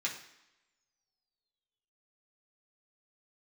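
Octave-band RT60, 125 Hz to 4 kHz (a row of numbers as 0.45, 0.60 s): 0.75, 0.85, 0.90, 0.95, 0.95, 0.90 s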